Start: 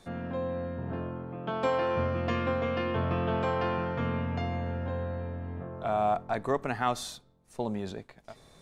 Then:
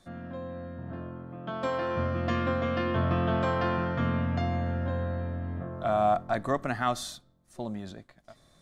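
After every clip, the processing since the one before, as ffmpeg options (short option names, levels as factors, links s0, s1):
-af "superequalizer=7b=0.398:9b=0.562:12b=0.631,dynaudnorm=f=310:g=13:m=2.37,volume=0.631"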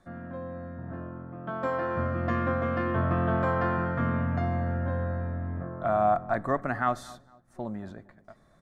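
-filter_complex "[0:a]highshelf=f=2300:t=q:w=1.5:g=-9,asplit=2[s0][s1];[s1]adelay=230,lowpass=f=1500:p=1,volume=0.106,asplit=2[s2][s3];[s3]adelay=230,lowpass=f=1500:p=1,volume=0.35,asplit=2[s4][s5];[s5]adelay=230,lowpass=f=1500:p=1,volume=0.35[s6];[s0][s2][s4][s6]amix=inputs=4:normalize=0"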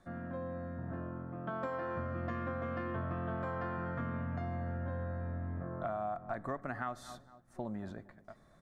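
-af "acompressor=threshold=0.0224:ratio=6,volume=0.794"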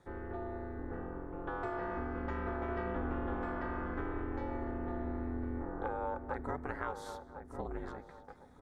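-filter_complex "[0:a]asplit=2[s0][s1];[s1]adelay=1055,lowpass=f=1100:p=1,volume=0.398,asplit=2[s2][s3];[s3]adelay=1055,lowpass=f=1100:p=1,volume=0.33,asplit=2[s4][s5];[s5]adelay=1055,lowpass=f=1100:p=1,volume=0.33,asplit=2[s6][s7];[s7]adelay=1055,lowpass=f=1100:p=1,volume=0.33[s8];[s2][s4][s6][s8]amix=inputs=4:normalize=0[s9];[s0][s9]amix=inputs=2:normalize=0,aeval=exprs='val(0)*sin(2*PI*160*n/s)':c=same,volume=1.33"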